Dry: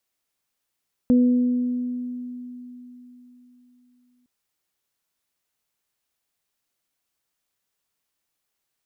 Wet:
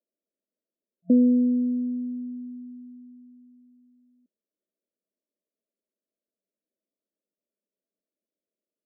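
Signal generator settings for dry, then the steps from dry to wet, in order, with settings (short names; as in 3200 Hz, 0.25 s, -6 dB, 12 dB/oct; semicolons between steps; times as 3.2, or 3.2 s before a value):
additive tone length 3.16 s, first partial 247 Hz, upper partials -12 dB, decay 3.81 s, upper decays 1.61 s, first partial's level -12.5 dB
FFT band-pass 180–670 Hz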